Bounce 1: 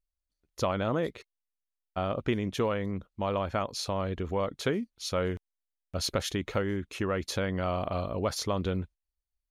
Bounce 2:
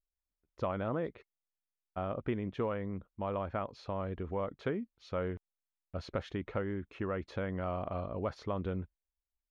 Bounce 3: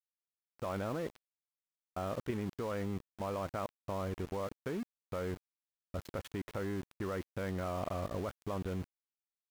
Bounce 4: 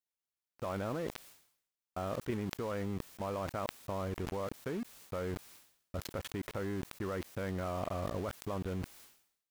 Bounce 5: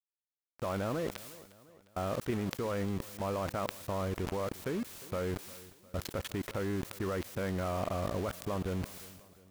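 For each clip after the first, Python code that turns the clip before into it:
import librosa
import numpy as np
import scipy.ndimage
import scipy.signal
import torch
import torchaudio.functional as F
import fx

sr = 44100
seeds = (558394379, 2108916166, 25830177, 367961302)

y1 = scipy.signal.sosfilt(scipy.signal.butter(2, 2000.0, 'lowpass', fs=sr, output='sos'), x)
y1 = y1 * 10.0 ** (-5.5 / 20.0)
y2 = fx.level_steps(y1, sr, step_db=10)
y2 = np.where(np.abs(y2) >= 10.0 ** (-47.0 / 20.0), y2, 0.0)
y2 = y2 * 10.0 ** (3.5 / 20.0)
y3 = fx.sustainer(y2, sr, db_per_s=88.0)
y4 = fx.law_mismatch(y3, sr, coded='mu')
y4 = fx.echo_feedback(y4, sr, ms=354, feedback_pct=51, wet_db=-20)
y4 = y4 * 10.0 ** (1.0 / 20.0)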